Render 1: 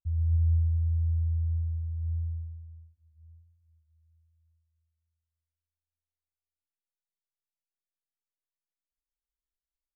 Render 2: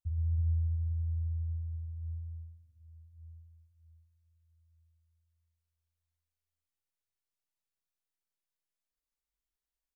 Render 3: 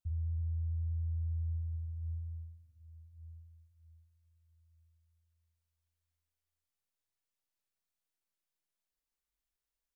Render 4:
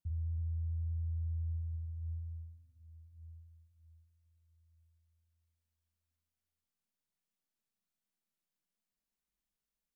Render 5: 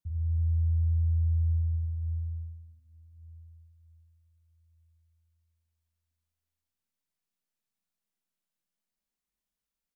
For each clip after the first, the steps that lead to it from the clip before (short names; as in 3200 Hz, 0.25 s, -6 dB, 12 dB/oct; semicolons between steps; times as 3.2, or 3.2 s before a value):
early reflections 19 ms -9.5 dB, 40 ms -4 dB; on a send at -20 dB: reverb RT60 5.5 s, pre-delay 0.11 s; on the sum: gain -2 dB
limiter -31.5 dBFS, peak gain reduction 7 dB
bell 200 Hz +13.5 dB 0.77 oct; gain -2.5 dB
feedback echo 97 ms, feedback 53%, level -8 dB; upward expander 1.5:1, over -43 dBFS; gain +5.5 dB